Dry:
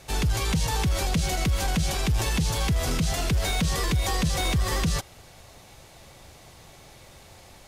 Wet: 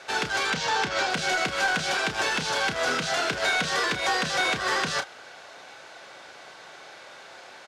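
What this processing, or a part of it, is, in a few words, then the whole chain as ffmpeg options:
intercom: -filter_complex "[0:a]asettb=1/sr,asplit=3[a][b][c];[a]atrim=end=0.504[d];[b]atrim=start=0.5:end=1.1,asetpts=PTS-STARTPTS,afade=t=in:d=0.004:c=qsin,afade=t=out:st=0.596:d=0.004:c=qsin,lowpass=f=7.4k:w=0.5412,lowpass=f=7.4k:w=1.3066[e];[c]atrim=start=1.096[f];[d][e]acrossfade=d=0.004:c1=hsin:c2=qsin[g];[g][f]acrossfade=d=0.004:c1=qsin:c2=hsin,highpass=440,lowpass=4.9k,equalizer=f=1.5k:t=o:w=0.25:g=12,asoftclip=type=tanh:threshold=-22dB,asplit=2[h][i];[i]adelay=32,volume=-9dB[j];[h][j]amix=inputs=2:normalize=0,volume=5.5dB"

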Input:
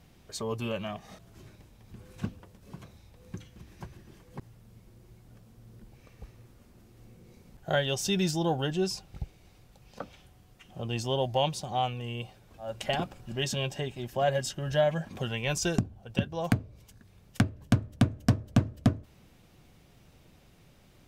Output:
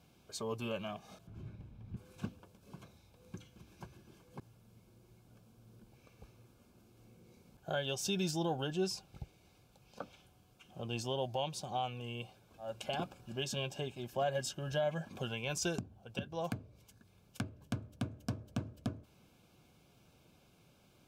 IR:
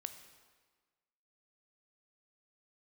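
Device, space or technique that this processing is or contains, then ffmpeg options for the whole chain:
PA system with an anti-feedback notch: -filter_complex "[0:a]asettb=1/sr,asplit=3[a][b][c];[a]atrim=end=1.274[d];[b]atrim=start=1.27:end=1.97,asetpts=PTS-STARTPTS,afade=t=in:d=0.004:c=qsin,afade=t=out:st=0.696:d=0.004:c=qsin,bass=f=250:g=14,treble=f=4k:g=-13[e];[c]atrim=start=1.966[f];[d][e]acrossfade=d=0.004:c1=hsin:c2=qsin[g];[g][f]acrossfade=d=0.004:c1=qsin:c2=hsin,highpass=f=120:p=1,asuperstop=centerf=1900:order=12:qfactor=5.8,alimiter=limit=-19.5dB:level=0:latency=1:release=135,volume=-5dB"

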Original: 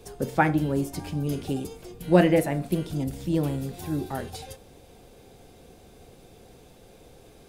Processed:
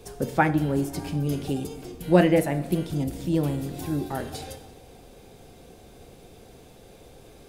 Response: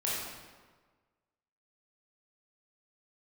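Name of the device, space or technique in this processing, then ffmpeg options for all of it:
ducked reverb: -filter_complex "[0:a]asplit=3[a][b][c];[1:a]atrim=start_sample=2205[d];[b][d]afir=irnorm=-1:irlink=0[e];[c]apad=whole_len=329947[f];[e][f]sidechaincompress=threshold=-27dB:ratio=8:attack=16:release=639,volume=-12.5dB[g];[a][g]amix=inputs=2:normalize=0"

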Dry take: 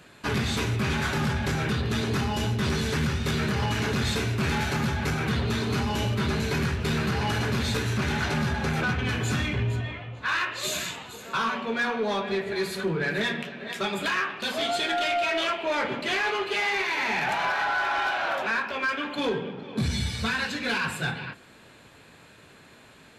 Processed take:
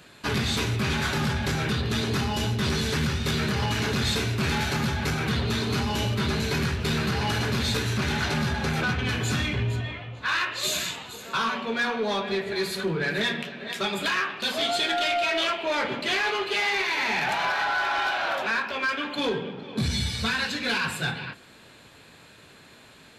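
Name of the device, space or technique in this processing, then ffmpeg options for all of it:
presence and air boost: -af "equalizer=f=4.1k:t=o:w=1:g=4,highshelf=f=11k:g=5"

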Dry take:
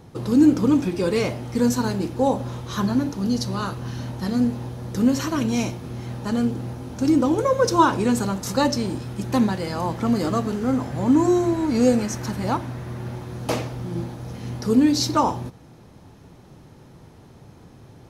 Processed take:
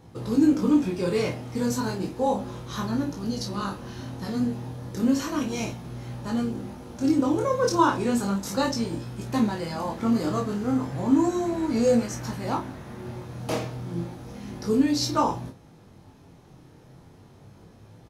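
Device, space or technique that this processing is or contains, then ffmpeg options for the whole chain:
double-tracked vocal: -filter_complex "[0:a]asplit=2[a][b];[b]adelay=30,volume=-7dB[c];[a][c]amix=inputs=2:normalize=0,flanger=delay=17.5:depth=6.2:speed=0.33,volume=-1.5dB"

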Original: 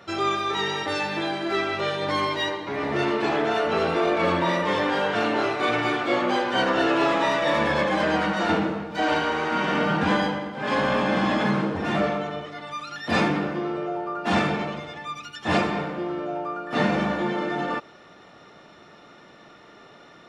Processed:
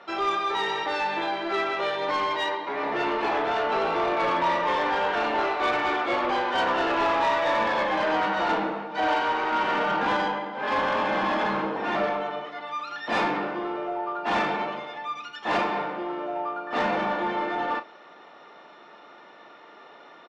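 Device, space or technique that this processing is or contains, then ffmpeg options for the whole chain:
intercom: -filter_complex "[0:a]highpass=340,lowpass=3.9k,equalizer=f=920:t=o:w=0.48:g=5.5,asoftclip=type=tanh:threshold=-18.5dB,asplit=2[a][b];[b]adelay=35,volume=-12dB[c];[a][c]amix=inputs=2:normalize=0"

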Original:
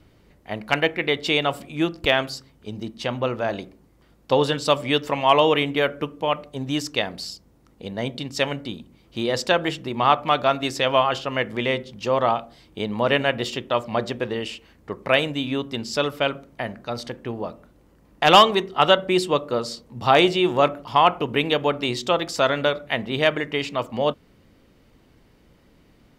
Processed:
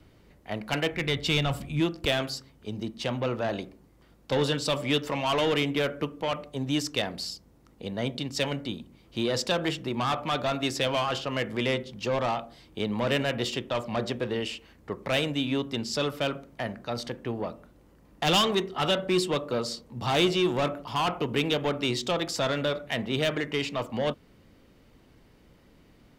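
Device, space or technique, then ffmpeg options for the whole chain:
one-band saturation: -filter_complex "[0:a]acrossover=split=280|3300[a][b][c];[b]asoftclip=type=tanh:threshold=-23dB[d];[a][d][c]amix=inputs=3:normalize=0,asplit=3[e][f][g];[e]afade=t=out:st=0.91:d=0.02[h];[f]asubboost=boost=10.5:cutoff=150,afade=t=in:st=0.91:d=0.02,afade=t=out:st=1.79:d=0.02[i];[g]afade=t=in:st=1.79:d=0.02[j];[h][i][j]amix=inputs=3:normalize=0,volume=-1.5dB"

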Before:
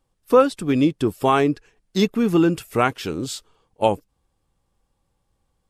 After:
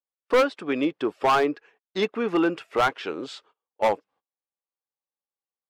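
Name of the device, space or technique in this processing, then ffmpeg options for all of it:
walkie-talkie: -af "highpass=490,lowpass=2.5k,asoftclip=type=hard:threshold=-17.5dB,agate=range=-27dB:threshold=-58dB:ratio=16:detection=peak,volume=2.5dB"

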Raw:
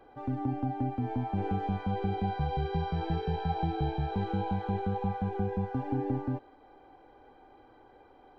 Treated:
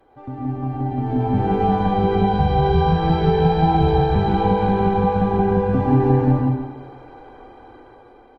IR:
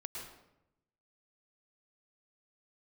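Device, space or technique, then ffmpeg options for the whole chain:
speakerphone in a meeting room: -filter_complex "[1:a]atrim=start_sample=2205[a];[0:a][a]afir=irnorm=-1:irlink=0,asplit=2[b][c];[c]adelay=130,highpass=300,lowpass=3.4k,asoftclip=type=hard:threshold=-28dB,volume=-9dB[d];[b][d]amix=inputs=2:normalize=0,dynaudnorm=f=340:g=7:m=10.5dB,volume=5.5dB" -ar 48000 -c:a libopus -b:a 24k

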